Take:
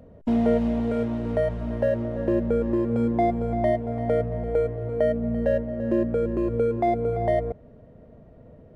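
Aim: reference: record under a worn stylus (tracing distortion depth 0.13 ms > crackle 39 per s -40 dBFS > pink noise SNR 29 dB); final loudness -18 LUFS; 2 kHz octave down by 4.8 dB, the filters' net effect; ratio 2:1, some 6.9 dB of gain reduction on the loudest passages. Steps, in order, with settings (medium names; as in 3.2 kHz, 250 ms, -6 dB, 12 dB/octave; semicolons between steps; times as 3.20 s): peaking EQ 2 kHz -5.5 dB; compression 2:1, threshold -31 dBFS; tracing distortion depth 0.13 ms; crackle 39 per s -40 dBFS; pink noise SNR 29 dB; trim +13 dB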